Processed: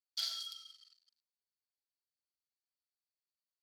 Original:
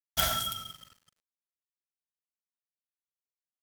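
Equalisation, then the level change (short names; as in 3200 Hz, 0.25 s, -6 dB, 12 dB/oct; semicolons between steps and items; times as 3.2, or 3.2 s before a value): band-pass 4500 Hz, Q 13; +8.5 dB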